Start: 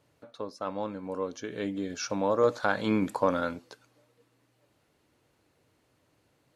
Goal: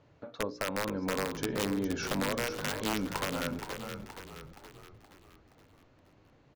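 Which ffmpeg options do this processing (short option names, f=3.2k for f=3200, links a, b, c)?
-filter_complex "[0:a]bandreject=f=60:t=h:w=6,bandreject=f=120:t=h:w=6,bandreject=f=180:t=h:w=6,bandreject=f=240:t=h:w=6,bandreject=f=300:t=h:w=6,bandreject=f=360:t=h:w=6,bandreject=f=420:t=h:w=6,bandreject=f=480:t=h:w=6,bandreject=f=540:t=h:w=6,aeval=exprs='0.237*(cos(1*acos(clip(val(0)/0.237,-1,1)))-cos(1*PI/2))+0.0841*(cos(2*acos(clip(val(0)/0.237,-1,1)))-cos(2*PI/2))+0.0211*(cos(3*acos(clip(val(0)/0.237,-1,1)))-cos(3*PI/2))+0.00944*(cos(5*acos(clip(val(0)/0.237,-1,1)))-cos(5*PI/2))+0.00473*(cos(8*acos(clip(val(0)/0.237,-1,1)))-cos(8*PI/2))':c=same,lowshelf=f=130:g=5.5,acompressor=threshold=-34dB:ratio=10,aresample=16000,aeval=exprs='clip(val(0),-1,0.0376)':c=same,aresample=44100,aemphasis=mode=reproduction:type=75kf,aeval=exprs='(mod(29.9*val(0)+1,2)-1)/29.9':c=same,asplit=7[a][b][c][d][e][f][g];[b]adelay=472,afreqshift=-48,volume=-7.5dB[h];[c]adelay=944,afreqshift=-96,volume=-13.5dB[i];[d]adelay=1416,afreqshift=-144,volume=-19.5dB[j];[e]adelay=1888,afreqshift=-192,volume=-25.6dB[k];[f]adelay=2360,afreqshift=-240,volume=-31.6dB[l];[g]adelay=2832,afreqshift=-288,volume=-37.6dB[m];[a][h][i][j][k][l][m]amix=inputs=7:normalize=0,volume=6.5dB"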